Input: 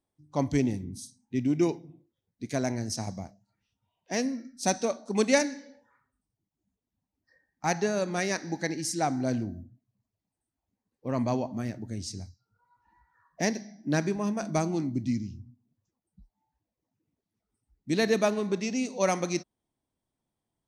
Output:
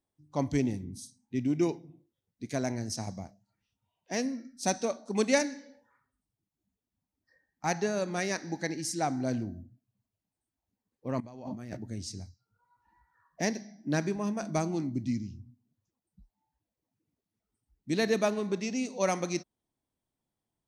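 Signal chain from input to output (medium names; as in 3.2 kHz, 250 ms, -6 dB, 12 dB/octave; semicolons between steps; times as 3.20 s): 11.20–11.77 s: compressor with a negative ratio -40 dBFS, ratio -1; trim -2.5 dB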